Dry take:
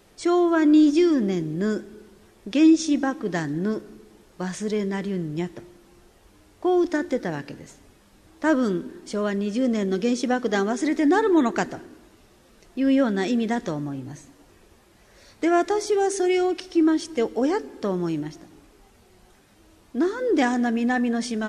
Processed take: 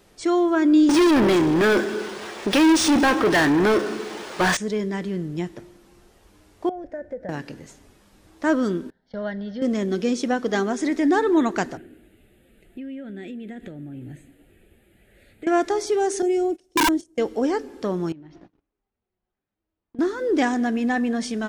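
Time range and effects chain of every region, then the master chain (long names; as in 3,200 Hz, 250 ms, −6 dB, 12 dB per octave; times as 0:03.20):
0:00.89–0:04.57: low-shelf EQ 170 Hz −8 dB + mid-hump overdrive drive 32 dB, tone 6,000 Hz, clips at −10 dBFS + linearly interpolated sample-rate reduction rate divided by 3×
0:06.69–0:07.29: drawn EQ curve 140 Hz 0 dB, 360 Hz −17 dB, 570 Hz +6 dB, 1,100 Hz −21 dB, 1,700 Hz −8 dB, 3,500 Hz −27 dB + downward compressor 2.5 to 1, threshold −30 dBFS
0:08.90–0:09.62: noise gate −36 dBFS, range −16 dB + Bessel low-pass filter 3,200 Hz, order 4 + phaser with its sweep stopped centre 1,700 Hz, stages 8
0:11.77–0:15.47: parametric band 4,600 Hz −8.5 dB 0.65 octaves + downward compressor 8 to 1, threshold −31 dBFS + phaser with its sweep stopped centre 2,500 Hz, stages 4
0:16.22–0:17.18: noise gate −31 dBFS, range −19 dB + flat-topped bell 2,200 Hz −12 dB 2.8 octaves + wrap-around overflow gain 14.5 dB
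0:18.12–0:19.99: noise gate −47 dBFS, range −29 dB + downward compressor 16 to 1, threshold −39 dBFS + high-frequency loss of the air 250 metres
whole clip: no processing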